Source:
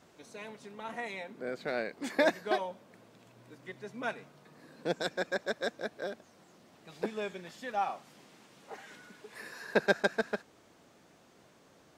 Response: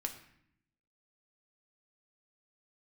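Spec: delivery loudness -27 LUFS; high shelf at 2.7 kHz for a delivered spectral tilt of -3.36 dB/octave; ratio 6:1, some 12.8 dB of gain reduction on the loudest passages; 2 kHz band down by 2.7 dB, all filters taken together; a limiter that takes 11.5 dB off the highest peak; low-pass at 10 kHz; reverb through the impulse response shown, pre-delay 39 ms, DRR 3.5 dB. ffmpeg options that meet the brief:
-filter_complex "[0:a]lowpass=10000,equalizer=f=2000:t=o:g=-6.5,highshelf=f=2700:g=7.5,acompressor=threshold=0.0158:ratio=6,alimiter=level_in=2.66:limit=0.0631:level=0:latency=1,volume=0.376,asplit=2[s0][s1];[1:a]atrim=start_sample=2205,adelay=39[s2];[s1][s2]afir=irnorm=-1:irlink=0,volume=0.668[s3];[s0][s3]amix=inputs=2:normalize=0,volume=7.5"

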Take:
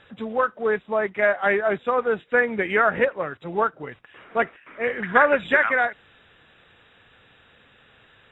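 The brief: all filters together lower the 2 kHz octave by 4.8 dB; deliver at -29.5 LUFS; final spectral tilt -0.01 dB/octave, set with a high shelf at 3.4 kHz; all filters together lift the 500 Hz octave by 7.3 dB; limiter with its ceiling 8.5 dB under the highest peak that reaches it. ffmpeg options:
-af "equalizer=f=500:t=o:g=9,equalizer=f=2000:t=o:g=-5.5,highshelf=f=3400:g=-6.5,volume=0.376,alimiter=limit=0.119:level=0:latency=1"

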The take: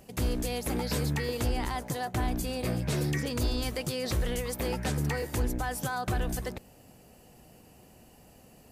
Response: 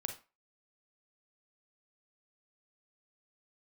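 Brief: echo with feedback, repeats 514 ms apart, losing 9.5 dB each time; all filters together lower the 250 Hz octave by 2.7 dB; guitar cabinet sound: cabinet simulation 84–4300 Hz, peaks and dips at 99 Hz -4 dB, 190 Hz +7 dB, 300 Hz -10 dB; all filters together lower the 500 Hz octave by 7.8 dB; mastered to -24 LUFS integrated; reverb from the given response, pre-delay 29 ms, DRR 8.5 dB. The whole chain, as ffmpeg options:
-filter_complex "[0:a]equalizer=f=250:t=o:g=-3,equalizer=f=500:t=o:g=-7,aecho=1:1:514|1028|1542|2056:0.335|0.111|0.0365|0.012,asplit=2[s0][s1];[1:a]atrim=start_sample=2205,adelay=29[s2];[s1][s2]afir=irnorm=-1:irlink=0,volume=0.376[s3];[s0][s3]amix=inputs=2:normalize=0,highpass=84,equalizer=f=99:t=q:w=4:g=-4,equalizer=f=190:t=q:w=4:g=7,equalizer=f=300:t=q:w=4:g=-10,lowpass=f=4300:w=0.5412,lowpass=f=4300:w=1.3066,volume=3.35"

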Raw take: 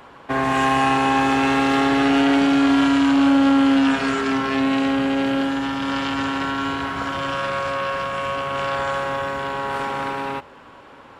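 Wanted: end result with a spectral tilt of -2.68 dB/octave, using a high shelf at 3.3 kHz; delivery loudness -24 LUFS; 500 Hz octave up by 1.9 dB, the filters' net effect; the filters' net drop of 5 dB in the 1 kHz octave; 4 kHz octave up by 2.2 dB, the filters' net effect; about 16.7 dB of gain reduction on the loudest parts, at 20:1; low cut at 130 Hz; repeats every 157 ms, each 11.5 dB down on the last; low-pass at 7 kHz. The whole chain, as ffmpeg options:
-af "highpass=130,lowpass=7000,equalizer=f=500:t=o:g=4.5,equalizer=f=1000:t=o:g=-8,highshelf=f=3300:g=-3.5,equalizer=f=4000:t=o:g=6.5,acompressor=threshold=0.0316:ratio=20,aecho=1:1:157|314|471:0.266|0.0718|0.0194,volume=2.82"

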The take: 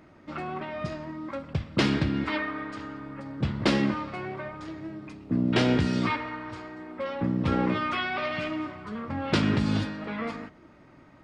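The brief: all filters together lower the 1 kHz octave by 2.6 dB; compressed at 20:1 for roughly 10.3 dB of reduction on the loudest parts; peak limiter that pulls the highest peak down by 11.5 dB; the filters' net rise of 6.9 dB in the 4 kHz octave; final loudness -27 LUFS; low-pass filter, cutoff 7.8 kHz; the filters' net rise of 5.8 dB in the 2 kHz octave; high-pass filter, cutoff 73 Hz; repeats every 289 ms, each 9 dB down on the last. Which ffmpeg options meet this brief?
-af "highpass=73,lowpass=7800,equalizer=f=1000:t=o:g=-6.5,equalizer=f=2000:t=o:g=7,equalizer=f=4000:t=o:g=7,acompressor=threshold=0.0447:ratio=20,alimiter=level_in=1.26:limit=0.0631:level=0:latency=1,volume=0.794,aecho=1:1:289|578|867|1156:0.355|0.124|0.0435|0.0152,volume=2.51"

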